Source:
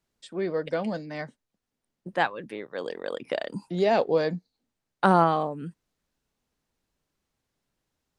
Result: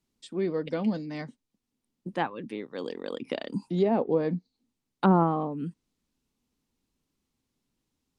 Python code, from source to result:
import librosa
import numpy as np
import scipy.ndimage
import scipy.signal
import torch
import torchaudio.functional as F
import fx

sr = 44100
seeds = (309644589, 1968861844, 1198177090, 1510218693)

y = fx.env_lowpass_down(x, sr, base_hz=1200.0, full_db=-18.0)
y = fx.graphic_eq_15(y, sr, hz=(250, 630, 1600), db=(7, -7, -7))